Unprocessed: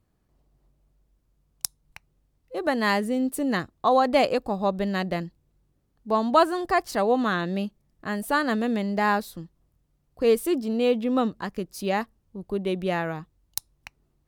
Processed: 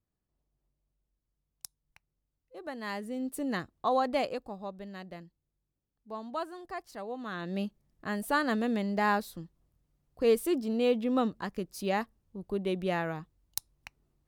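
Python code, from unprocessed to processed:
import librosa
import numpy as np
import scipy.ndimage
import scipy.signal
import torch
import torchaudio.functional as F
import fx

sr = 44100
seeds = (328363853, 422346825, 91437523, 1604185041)

y = fx.gain(x, sr, db=fx.line((2.8, -15.5), (3.39, -7.5), (4.03, -7.5), (4.77, -17.0), (7.19, -17.0), (7.61, -4.5)))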